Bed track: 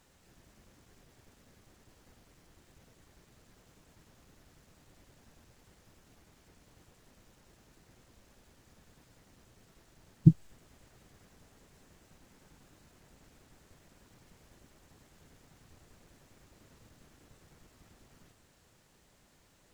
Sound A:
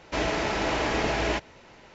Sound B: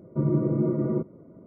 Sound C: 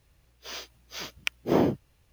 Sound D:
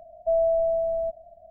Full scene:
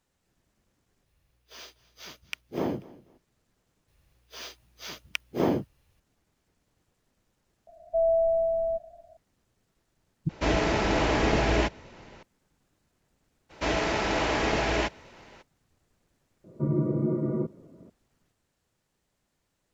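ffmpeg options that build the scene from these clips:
ffmpeg -i bed.wav -i cue0.wav -i cue1.wav -i cue2.wav -i cue3.wav -filter_complex "[3:a]asplit=2[link_01][link_02];[1:a]asplit=2[link_03][link_04];[0:a]volume=-11.5dB[link_05];[link_01]aecho=1:1:243|486:0.0891|0.0241[link_06];[4:a]dynaudnorm=framelen=110:gausssize=5:maxgain=4dB[link_07];[link_03]lowshelf=frequency=400:gain=6.5[link_08];[link_05]asplit=4[link_09][link_10][link_11][link_12];[link_09]atrim=end=1.064[link_13];[link_06]atrim=end=2.12,asetpts=PTS-STARTPTS,volume=-7dB[link_14];[link_10]atrim=start=3.176:end=3.884[link_15];[link_02]atrim=end=2.12,asetpts=PTS-STARTPTS,volume=-2.5dB[link_16];[link_11]atrim=start=5.996:end=10.294[link_17];[link_08]atrim=end=1.94,asetpts=PTS-STARTPTS,volume=-0.5dB[link_18];[link_12]atrim=start=12.226[link_19];[link_07]atrim=end=1.5,asetpts=PTS-STARTPTS,volume=-5dB,afade=type=in:duration=0.004:curve=hsin,afade=type=out:start_time=1.496:duration=0.004:curve=hsin,adelay=7670[link_20];[link_04]atrim=end=1.94,asetpts=PTS-STARTPTS,afade=type=in:duration=0.02,afade=type=out:start_time=1.92:duration=0.02,adelay=13490[link_21];[2:a]atrim=end=1.46,asetpts=PTS-STARTPTS,volume=-2.5dB,afade=type=in:duration=0.004:curve=hsin,afade=type=out:start_time=1.456:duration=0.004:curve=hsin,adelay=16440[link_22];[link_13][link_14]acrossfade=duration=0.004:curve1=hsin:curve2=hsin[link_23];[link_23][link_15]acrossfade=duration=0.004:curve1=hsin:curve2=hsin[link_24];[link_24][link_16]acrossfade=duration=0.004:curve1=hsin:curve2=hsin[link_25];[link_25][link_17]acrossfade=duration=0.004:curve1=hsin:curve2=hsin[link_26];[link_26][link_18]acrossfade=duration=0.004:curve1=hsin:curve2=hsin[link_27];[link_27][link_19]acrossfade=duration=0.004:curve1=hsin:curve2=hsin[link_28];[link_28][link_20][link_21][link_22]amix=inputs=4:normalize=0" out.wav

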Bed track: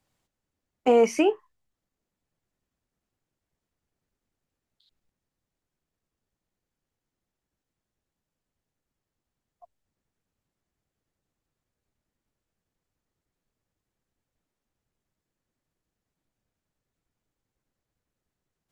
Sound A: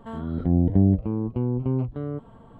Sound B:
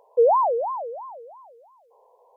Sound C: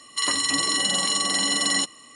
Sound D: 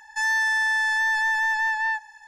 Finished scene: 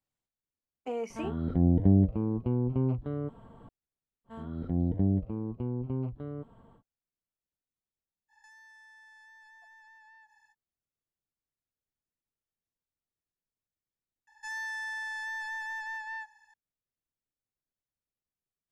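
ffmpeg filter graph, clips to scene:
ffmpeg -i bed.wav -i cue0.wav -i cue1.wav -i cue2.wav -i cue3.wav -filter_complex "[1:a]asplit=2[link_01][link_02];[4:a]asplit=2[link_03][link_04];[0:a]volume=-16dB[link_05];[link_03]acompressor=threshold=-38dB:ratio=6:attack=3.2:release=140:knee=1:detection=peak[link_06];[link_01]atrim=end=2.59,asetpts=PTS-STARTPTS,volume=-3.5dB,afade=type=in:duration=0.004:curve=hsin,afade=type=out:start_time=2.586:duration=0.004:curve=hsin,adelay=1100[link_07];[link_02]atrim=end=2.59,asetpts=PTS-STARTPTS,volume=-8.5dB,afade=type=in:duration=0.1,afade=type=out:start_time=2.49:duration=0.1,adelay=4240[link_08];[link_06]atrim=end=2.27,asetpts=PTS-STARTPTS,volume=-17.5dB,afade=type=in:duration=0.05,afade=type=out:start_time=2.22:duration=0.05,adelay=8280[link_09];[link_04]atrim=end=2.27,asetpts=PTS-STARTPTS,volume=-14.5dB,afade=type=in:duration=0.004:curve=hsin,afade=type=out:start_time=2.266:duration=0.004:curve=hsin,adelay=14270[link_10];[link_05][link_07][link_08][link_09][link_10]amix=inputs=5:normalize=0" out.wav

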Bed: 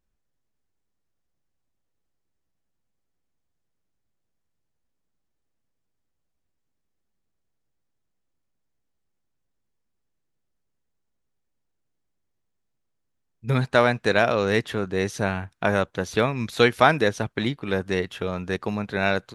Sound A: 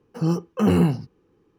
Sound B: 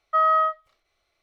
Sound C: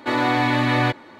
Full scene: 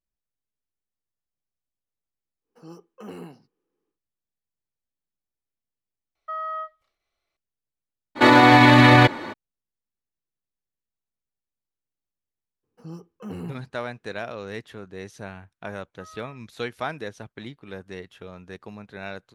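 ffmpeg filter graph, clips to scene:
ffmpeg -i bed.wav -i cue0.wav -i cue1.wav -i cue2.wav -filter_complex "[1:a]asplit=2[link_01][link_02];[2:a]asplit=2[link_03][link_04];[0:a]volume=-13dB[link_05];[link_01]highpass=280[link_06];[link_03]alimiter=limit=-17dB:level=0:latency=1:release=71[link_07];[3:a]alimiter=level_in=14dB:limit=-1dB:release=50:level=0:latency=1[link_08];[link_04]asplit=3[link_09][link_10][link_11];[link_09]bandpass=frequency=300:width_type=q:width=8,volume=0dB[link_12];[link_10]bandpass=frequency=870:width_type=q:width=8,volume=-6dB[link_13];[link_11]bandpass=frequency=2240:width_type=q:width=8,volume=-9dB[link_14];[link_12][link_13][link_14]amix=inputs=3:normalize=0[link_15];[link_06]atrim=end=1.58,asetpts=PTS-STARTPTS,volume=-16.5dB,afade=type=in:duration=0.1,afade=type=out:start_time=1.48:duration=0.1,adelay=2410[link_16];[link_07]atrim=end=1.22,asetpts=PTS-STARTPTS,volume=-8.5dB,afade=type=in:duration=0.004:curve=hsin,afade=type=out:start_time=1.216:duration=0.004:curve=hsin,adelay=6150[link_17];[link_08]atrim=end=1.19,asetpts=PTS-STARTPTS,volume=-3dB,afade=type=in:duration=0.02,afade=type=out:start_time=1.17:duration=0.02,adelay=8150[link_18];[link_02]atrim=end=1.58,asetpts=PTS-STARTPTS,volume=-17dB,afade=type=in:duration=0.004:curve=hsin,afade=type=out:start_time=1.576:duration=0.004:curve=hsin,adelay=12630[link_19];[link_15]atrim=end=1.22,asetpts=PTS-STARTPTS,volume=-6dB,afade=type=in:duration=0.004:curve=hsin,afade=type=out:start_time=1.216:duration=0.004:curve=hsin,adelay=15860[link_20];[link_05][link_16][link_17][link_18][link_19][link_20]amix=inputs=6:normalize=0" out.wav

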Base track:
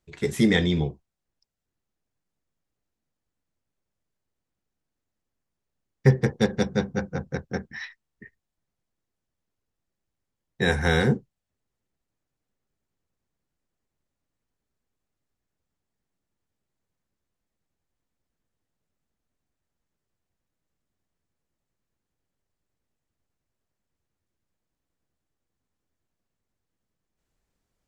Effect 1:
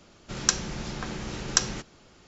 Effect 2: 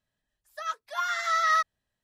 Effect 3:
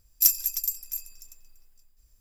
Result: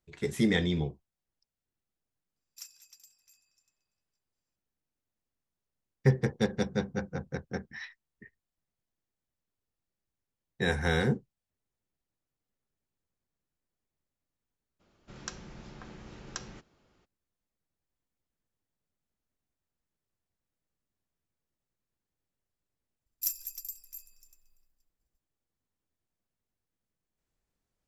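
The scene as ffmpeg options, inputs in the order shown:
ffmpeg -i bed.wav -i cue0.wav -i cue1.wav -i cue2.wav -filter_complex "[3:a]asplit=2[link_01][link_02];[0:a]volume=-6dB[link_03];[link_01]highpass=700,lowpass=5100[link_04];[1:a]highshelf=frequency=4200:gain=-10[link_05];[link_02]agate=range=-33dB:threshold=-51dB:ratio=3:release=100:detection=peak[link_06];[link_04]atrim=end=2.2,asetpts=PTS-STARTPTS,volume=-15.5dB,afade=type=in:duration=0.004:curve=hsin,afade=type=out:start_time=2.196:duration=0.004:curve=hsin,adelay=2360[link_07];[link_05]atrim=end=2.27,asetpts=PTS-STARTPTS,volume=-12.5dB,afade=type=in:duration=0.02,afade=type=out:start_time=2.25:duration=0.02,adelay=14790[link_08];[link_06]atrim=end=2.2,asetpts=PTS-STARTPTS,volume=-12.5dB,afade=type=in:duration=0.004:curve=hsin,afade=type=out:start_time=2.196:duration=0.004:curve=hsin,adelay=23010[link_09];[link_03][link_07][link_08][link_09]amix=inputs=4:normalize=0" out.wav

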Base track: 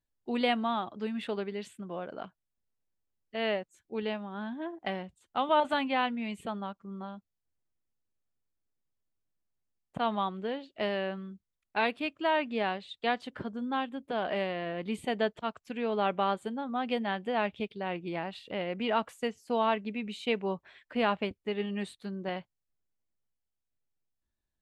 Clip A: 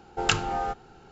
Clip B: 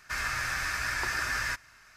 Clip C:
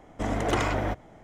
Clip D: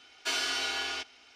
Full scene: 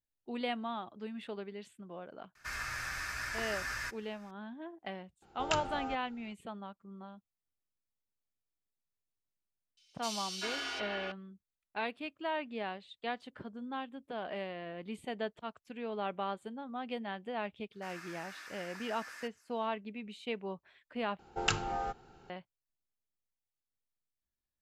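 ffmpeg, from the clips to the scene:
ffmpeg -i bed.wav -i cue0.wav -i cue1.wav -i cue2.wav -i cue3.wav -filter_complex "[2:a]asplit=2[link_01][link_02];[1:a]asplit=2[link_03][link_04];[0:a]volume=-8dB[link_05];[4:a]acrossover=split=3200[link_06][link_07];[link_06]adelay=390[link_08];[link_08][link_07]amix=inputs=2:normalize=0[link_09];[link_02]highpass=frequency=250:width=0.5412,highpass=frequency=250:width=1.3066[link_10];[link_05]asplit=2[link_11][link_12];[link_11]atrim=end=21.194[link_13];[link_04]atrim=end=1.11,asetpts=PTS-STARTPTS,volume=-7dB[link_14];[link_12]atrim=start=22.296[link_15];[link_01]atrim=end=1.96,asetpts=PTS-STARTPTS,volume=-7.5dB,afade=type=in:duration=0.004:curve=hsin,afade=type=out:start_time=1.956:duration=0.004:curve=hsin,adelay=2350[link_16];[link_03]atrim=end=1.11,asetpts=PTS-STARTPTS,volume=-11dB,afade=type=in:duration=0.004:curve=hsin,afade=type=out:start_time=1.106:duration=0.004:curve=hsin,adelay=5220[link_17];[link_09]atrim=end=1.35,asetpts=PTS-STARTPTS,volume=-5dB,afade=type=in:duration=0.004:curve=hsin,afade=type=out:start_time=1.346:duration=0.004:curve=hsin,adelay=9770[link_18];[link_10]atrim=end=1.96,asetpts=PTS-STARTPTS,volume=-17.5dB,afade=type=in:duration=0.004:curve=hsin,afade=type=out:start_time=1.956:duration=0.004:curve=hsin,adelay=17720[link_19];[link_13][link_14]acrossfade=duration=0.004:curve1=hsin:curve2=hsin[link_20];[link_20][link_15]acrossfade=duration=0.004:curve1=hsin:curve2=hsin[link_21];[link_21][link_16][link_17][link_18][link_19]amix=inputs=5:normalize=0" out.wav

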